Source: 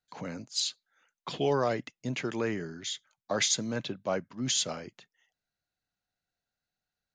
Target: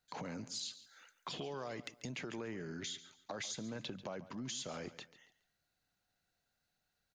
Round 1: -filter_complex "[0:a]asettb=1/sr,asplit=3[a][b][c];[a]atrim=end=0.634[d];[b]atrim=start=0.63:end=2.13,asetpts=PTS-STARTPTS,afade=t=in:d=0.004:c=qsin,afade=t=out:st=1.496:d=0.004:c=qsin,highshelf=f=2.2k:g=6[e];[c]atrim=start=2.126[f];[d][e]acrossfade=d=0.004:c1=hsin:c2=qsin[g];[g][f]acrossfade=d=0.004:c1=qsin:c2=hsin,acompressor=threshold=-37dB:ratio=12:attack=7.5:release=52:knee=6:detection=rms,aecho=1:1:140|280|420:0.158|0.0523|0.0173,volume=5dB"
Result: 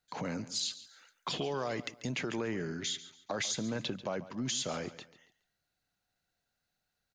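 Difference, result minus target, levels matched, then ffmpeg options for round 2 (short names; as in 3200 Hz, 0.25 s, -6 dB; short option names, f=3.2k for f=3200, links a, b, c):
compressor: peak gain reduction -8 dB
-filter_complex "[0:a]asettb=1/sr,asplit=3[a][b][c];[a]atrim=end=0.634[d];[b]atrim=start=0.63:end=2.13,asetpts=PTS-STARTPTS,afade=t=in:d=0.004:c=qsin,afade=t=out:st=1.496:d=0.004:c=qsin,highshelf=f=2.2k:g=6[e];[c]atrim=start=2.126[f];[d][e]acrossfade=d=0.004:c1=hsin:c2=qsin[g];[g][f]acrossfade=d=0.004:c1=qsin:c2=hsin,acompressor=threshold=-46dB:ratio=12:attack=7.5:release=52:knee=6:detection=rms,aecho=1:1:140|280|420:0.158|0.0523|0.0173,volume=5dB"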